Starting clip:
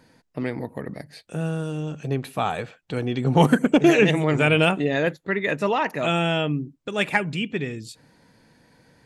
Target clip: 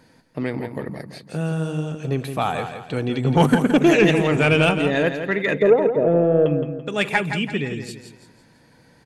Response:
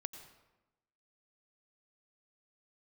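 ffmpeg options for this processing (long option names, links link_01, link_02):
-filter_complex "[0:a]asettb=1/sr,asplit=3[link_01][link_02][link_03];[link_01]atrim=end=5.544[link_04];[link_02]atrim=start=5.54:end=6.46,asetpts=PTS-STARTPTS,afade=type=in:duration=0.004:curve=qsin,afade=type=out:start_time=0.916:duration=0.004:curve=qsin,lowpass=frequency=480:width_type=q:width=4.9[link_05];[link_03]atrim=start=6.456[link_06];[link_04][link_05]acrossfade=duration=0.004:curve1=hsin:curve2=qsin[link_07];[link_07][link_06]acrossfade=duration=0.004:curve1=qsin:curve2=hsin,aeval=exprs='0.631*(cos(1*acos(clip(val(0)/0.631,-1,1)))-cos(1*PI/2))+0.0355*(cos(5*acos(clip(val(0)/0.631,-1,1)))-cos(5*PI/2))':channel_layout=same,aecho=1:1:168|336|504|672:0.376|0.147|0.0572|0.0223"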